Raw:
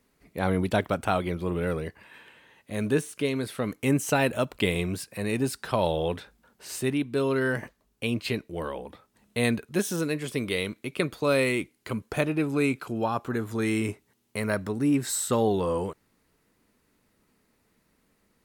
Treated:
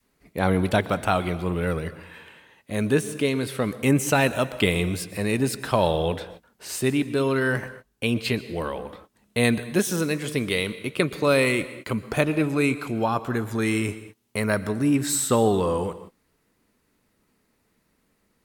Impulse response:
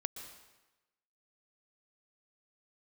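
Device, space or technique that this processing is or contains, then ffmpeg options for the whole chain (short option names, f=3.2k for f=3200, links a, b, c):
keyed gated reverb: -filter_complex "[0:a]adynamicequalizer=threshold=0.0158:dfrequency=380:dqfactor=0.73:tfrequency=380:tqfactor=0.73:attack=5:release=100:ratio=0.375:range=2:mode=cutabove:tftype=bell,asplit=3[a][b][c];[1:a]atrim=start_sample=2205[d];[b][d]afir=irnorm=-1:irlink=0[e];[c]apad=whole_len=813311[f];[e][f]sidechaingate=range=-33dB:threshold=-55dB:ratio=16:detection=peak,volume=-2dB[g];[a][g]amix=inputs=2:normalize=0"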